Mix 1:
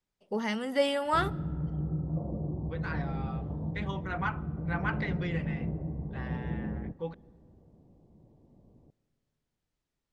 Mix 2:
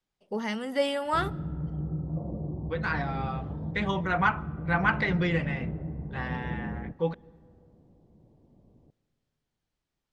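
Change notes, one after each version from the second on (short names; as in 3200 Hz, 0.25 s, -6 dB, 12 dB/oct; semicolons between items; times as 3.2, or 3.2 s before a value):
second voice +8.5 dB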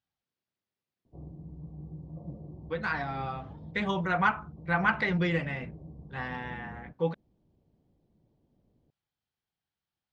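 first voice: muted; background -9.0 dB; reverb: off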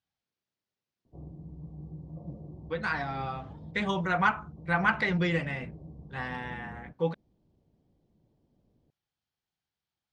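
master: remove air absorption 71 m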